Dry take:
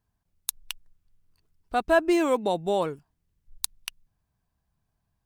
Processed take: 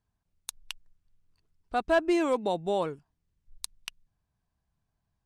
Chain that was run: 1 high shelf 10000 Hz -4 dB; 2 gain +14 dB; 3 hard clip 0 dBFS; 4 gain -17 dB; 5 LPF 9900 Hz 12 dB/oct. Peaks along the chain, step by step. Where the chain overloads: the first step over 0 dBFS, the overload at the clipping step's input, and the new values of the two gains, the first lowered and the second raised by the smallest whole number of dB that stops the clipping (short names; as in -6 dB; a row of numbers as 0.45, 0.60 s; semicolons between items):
-7.5, +6.5, 0.0, -17.0, -15.5 dBFS; step 2, 6.5 dB; step 2 +7 dB, step 4 -10 dB